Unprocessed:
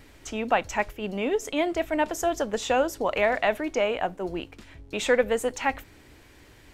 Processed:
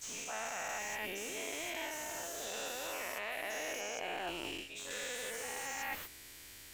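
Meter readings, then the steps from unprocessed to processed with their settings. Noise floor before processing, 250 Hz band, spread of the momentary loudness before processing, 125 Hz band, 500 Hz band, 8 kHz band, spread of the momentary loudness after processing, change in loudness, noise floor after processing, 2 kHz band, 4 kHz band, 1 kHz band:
-53 dBFS, -19.5 dB, 10 LU, -17.0 dB, -18.5 dB, -1.5 dB, 4 LU, -13.0 dB, -53 dBFS, -9.5 dB, -6.0 dB, -14.5 dB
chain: every event in the spectrogram widened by 480 ms; pre-emphasis filter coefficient 0.9; reverse; compression 10:1, threshold -40 dBFS, peak gain reduction 16.5 dB; reverse; slew-rate limiter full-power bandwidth 31 Hz; trim +3.5 dB

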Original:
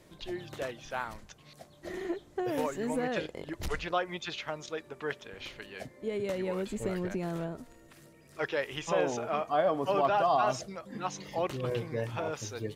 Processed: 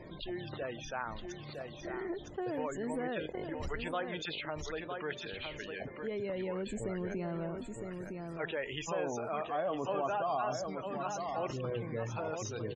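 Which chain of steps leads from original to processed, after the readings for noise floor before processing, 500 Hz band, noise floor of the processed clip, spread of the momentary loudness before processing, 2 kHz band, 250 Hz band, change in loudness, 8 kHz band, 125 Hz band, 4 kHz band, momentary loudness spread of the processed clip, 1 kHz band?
-58 dBFS, -4.5 dB, -47 dBFS, 15 LU, -3.5 dB, -3.0 dB, -4.5 dB, -3.0 dB, -2.0 dB, -3.0 dB, 8 LU, -5.5 dB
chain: loudest bins only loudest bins 64; delay 959 ms -10 dB; level flattener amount 50%; trim -8.5 dB

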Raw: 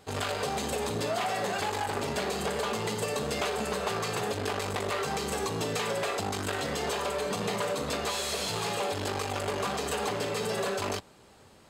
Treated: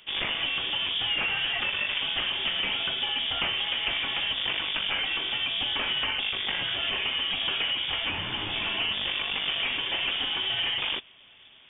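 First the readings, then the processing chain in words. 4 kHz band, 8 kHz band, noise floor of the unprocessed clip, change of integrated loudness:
+12.5 dB, under -40 dB, -56 dBFS, +4.5 dB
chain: frequency inversion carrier 3.5 kHz; trim +2.5 dB

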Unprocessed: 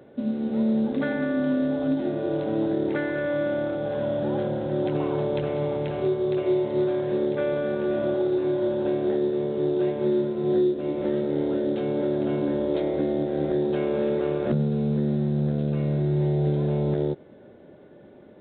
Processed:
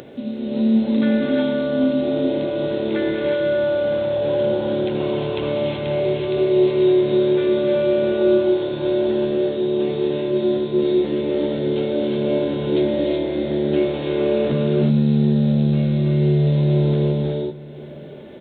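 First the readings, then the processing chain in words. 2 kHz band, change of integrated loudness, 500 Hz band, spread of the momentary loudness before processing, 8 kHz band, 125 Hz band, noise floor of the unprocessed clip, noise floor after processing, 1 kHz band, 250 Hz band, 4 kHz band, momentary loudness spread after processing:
+4.5 dB, +5.5 dB, +6.0 dB, 3 LU, no reading, +6.5 dB, -49 dBFS, -35 dBFS, +2.0 dB, +5.5 dB, +12.5 dB, 6 LU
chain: resonant high shelf 2 kHz +6.5 dB, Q 1.5; gated-style reverb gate 400 ms rising, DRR -2.5 dB; upward compressor, threshold -31 dBFS; on a send: delay 767 ms -20.5 dB

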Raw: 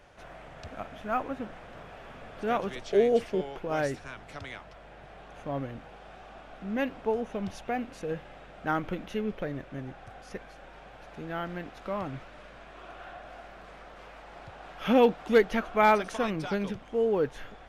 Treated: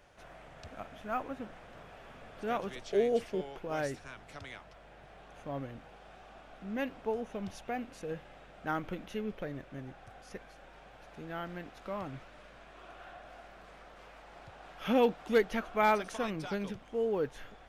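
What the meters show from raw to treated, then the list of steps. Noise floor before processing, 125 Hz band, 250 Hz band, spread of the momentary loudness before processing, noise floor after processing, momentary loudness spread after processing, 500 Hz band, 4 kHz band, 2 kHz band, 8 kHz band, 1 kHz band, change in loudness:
-50 dBFS, -5.5 dB, -5.5 dB, 24 LU, -55 dBFS, 24 LU, -5.5 dB, -4.0 dB, -5.0 dB, -2.5 dB, -5.5 dB, -5.5 dB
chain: treble shelf 5.4 kHz +5 dB; trim -5.5 dB

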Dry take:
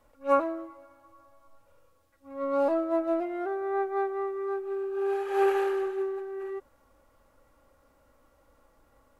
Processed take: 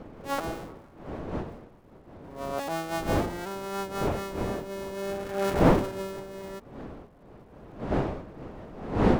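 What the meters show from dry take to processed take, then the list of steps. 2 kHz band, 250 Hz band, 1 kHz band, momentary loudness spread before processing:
+3.0 dB, +4.5 dB, 0.0 dB, 11 LU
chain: cycle switcher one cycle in 2, muted; wind noise 480 Hz -30 dBFS; trim -1.5 dB

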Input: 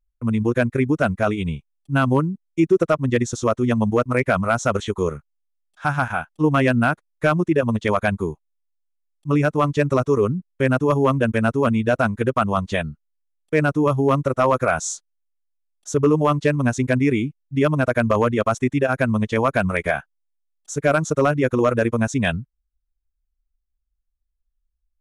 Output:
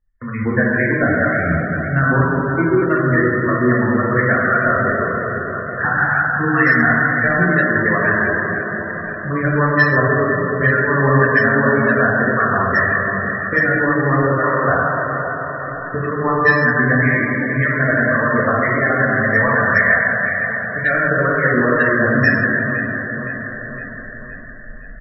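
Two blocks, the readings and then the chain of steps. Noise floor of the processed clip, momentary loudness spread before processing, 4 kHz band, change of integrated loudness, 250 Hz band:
-30 dBFS, 7 LU, no reading, +4.5 dB, +2.0 dB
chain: recorder AGC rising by 20 dB/s; resonant low-pass 1.8 kHz, resonance Q 13; on a send: feedback delay 514 ms, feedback 54%, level -14 dB; on the sum: saturation -6 dBFS, distortion -14 dB; in parallel at +3 dB: compression 5:1, threshold -29 dBFS, peak gain reduction 17 dB; on the sum: transient shaper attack +2 dB, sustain -8 dB; harmonic tremolo 1.9 Hz, depth 70%, crossover 1.3 kHz; plate-style reverb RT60 3.6 s, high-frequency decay 0.4×, DRR -6.5 dB; loudest bins only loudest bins 64; trim -5 dB

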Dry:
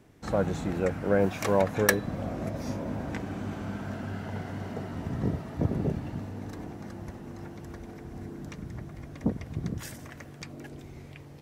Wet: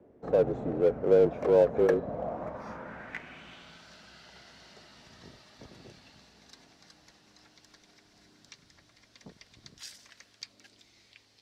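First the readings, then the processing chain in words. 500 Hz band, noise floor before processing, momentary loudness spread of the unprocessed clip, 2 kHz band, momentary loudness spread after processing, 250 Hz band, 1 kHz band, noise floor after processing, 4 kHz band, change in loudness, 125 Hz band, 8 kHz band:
+3.5 dB, -46 dBFS, 17 LU, -9.5 dB, 23 LU, -6.0 dB, -4.5 dB, -64 dBFS, -4.5 dB, +4.5 dB, -11.0 dB, -13.0 dB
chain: bass shelf 420 Hz +6 dB; band-pass sweep 530 Hz -> 4.5 kHz, 1.92–3.84 s; frequency shift -35 Hz; in parallel at -6 dB: overload inside the chain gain 33.5 dB; on the sum: trim +2 dB

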